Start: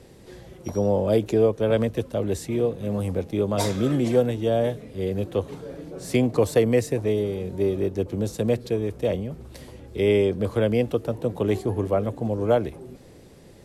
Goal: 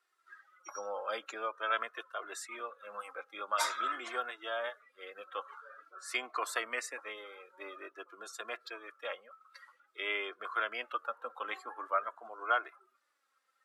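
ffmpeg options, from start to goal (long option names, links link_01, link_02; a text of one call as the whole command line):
ffmpeg -i in.wav -af "highpass=frequency=1300:width_type=q:width=5.4,afftdn=noise_reduction=20:noise_floor=-43,flanger=delay=2.8:depth=1:regen=30:speed=0.48:shape=sinusoidal,volume=-1dB" out.wav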